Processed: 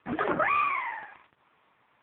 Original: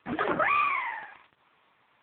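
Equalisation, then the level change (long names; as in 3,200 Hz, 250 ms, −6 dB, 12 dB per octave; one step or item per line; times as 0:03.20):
high-frequency loss of the air 230 metres
+1.0 dB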